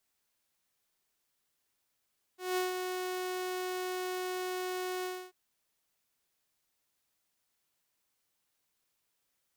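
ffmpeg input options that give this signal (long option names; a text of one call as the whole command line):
ffmpeg -f lavfi -i "aevalsrc='0.0501*(2*mod(367*t,1)-1)':duration=2.939:sample_rate=44100,afade=type=in:duration=0.186,afade=type=out:start_time=0.186:duration=0.153:silence=0.531,afade=type=out:start_time=2.66:duration=0.279" out.wav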